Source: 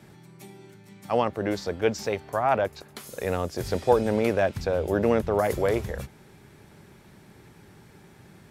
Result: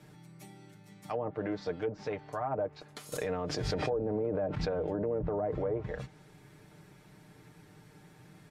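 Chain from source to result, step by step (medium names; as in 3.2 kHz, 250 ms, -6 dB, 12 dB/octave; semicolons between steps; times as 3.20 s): low-pass that closes with the level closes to 630 Hz, closed at -18.5 dBFS; comb 6.6 ms, depth 61%; peak limiter -18 dBFS, peak gain reduction 11 dB; 3.12–5.59 s: swell ahead of each attack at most 26 dB/s; trim -6 dB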